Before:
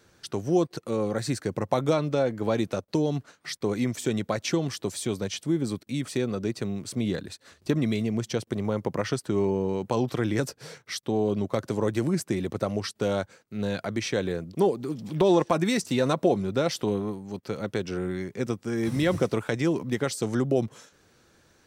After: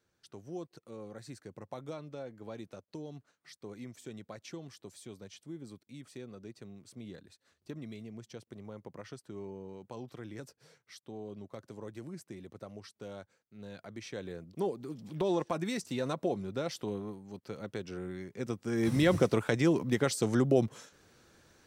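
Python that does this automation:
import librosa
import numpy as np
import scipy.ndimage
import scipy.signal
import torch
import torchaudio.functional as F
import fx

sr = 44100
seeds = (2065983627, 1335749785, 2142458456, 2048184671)

y = fx.gain(x, sr, db=fx.line((13.58, -18.5), (14.71, -10.0), (18.29, -10.0), (18.87, -1.5)))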